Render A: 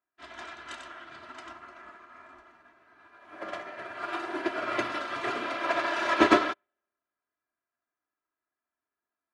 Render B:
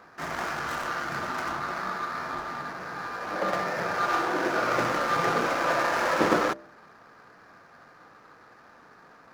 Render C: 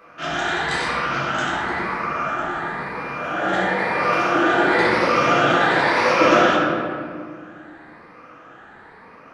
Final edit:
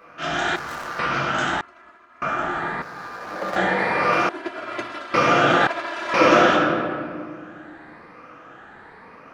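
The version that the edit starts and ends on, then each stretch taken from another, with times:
C
0.56–0.99 from B
1.61–2.22 from A
2.82–3.56 from B
4.29–5.14 from A
5.67–6.14 from A

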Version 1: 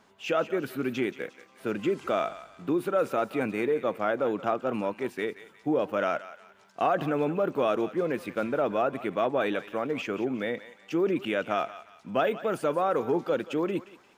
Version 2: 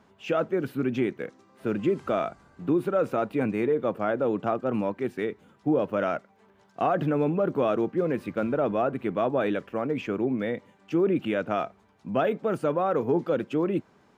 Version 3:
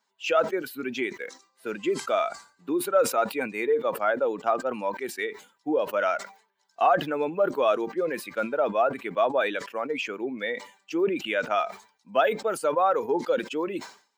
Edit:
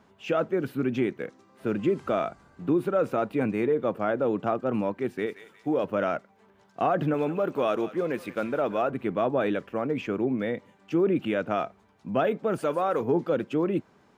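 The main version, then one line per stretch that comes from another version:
2
5.26–5.84 from 1
7.14–8.9 from 1
12.58–13.01 from 1
not used: 3

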